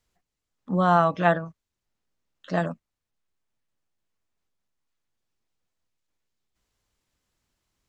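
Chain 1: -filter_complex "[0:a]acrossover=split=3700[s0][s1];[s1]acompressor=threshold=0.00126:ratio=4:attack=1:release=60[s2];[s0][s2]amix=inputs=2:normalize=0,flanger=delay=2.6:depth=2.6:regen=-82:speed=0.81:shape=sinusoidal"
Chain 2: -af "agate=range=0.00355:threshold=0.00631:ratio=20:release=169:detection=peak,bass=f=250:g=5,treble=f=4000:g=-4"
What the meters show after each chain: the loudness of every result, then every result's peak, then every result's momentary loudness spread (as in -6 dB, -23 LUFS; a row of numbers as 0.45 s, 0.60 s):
-28.5 LUFS, -22.5 LUFS; -9.5 dBFS, -4.5 dBFS; 11 LU, 15 LU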